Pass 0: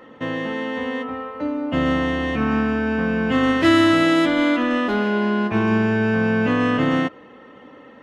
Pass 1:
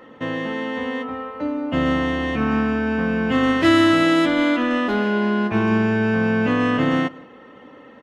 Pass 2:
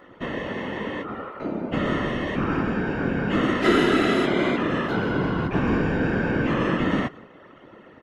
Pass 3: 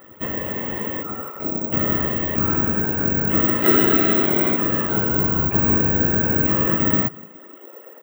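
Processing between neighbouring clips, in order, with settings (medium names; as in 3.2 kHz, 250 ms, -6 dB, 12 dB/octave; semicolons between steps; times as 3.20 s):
echo from a far wall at 29 m, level -23 dB
whisper effect; trim -4 dB
dynamic bell 3.4 kHz, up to -3 dB, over -39 dBFS, Q 0.97; high-pass sweep 70 Hz -> 470 Hz, 6.81–7.74 s; careless resampling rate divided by 2×, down none, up zero stuff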